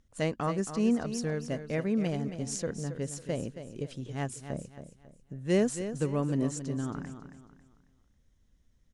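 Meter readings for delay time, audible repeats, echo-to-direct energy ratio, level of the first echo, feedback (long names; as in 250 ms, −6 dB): 273 ms, 3, −10.0 dB, −10.5 dB, 34%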